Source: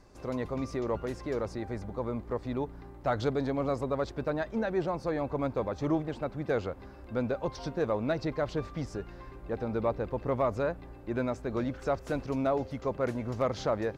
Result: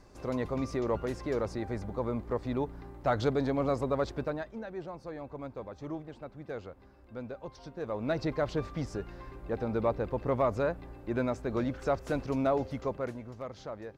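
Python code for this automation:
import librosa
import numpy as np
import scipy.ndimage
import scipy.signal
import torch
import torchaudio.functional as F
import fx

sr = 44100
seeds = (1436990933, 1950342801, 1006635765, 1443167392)

y = fx.gain(x, sr, db=fx.line((4.16, 1.0), (4.59, -10.0), (7.73, -10.0), (8.17, 0.5), (12.79, 0.5), (13.36, -11.5)))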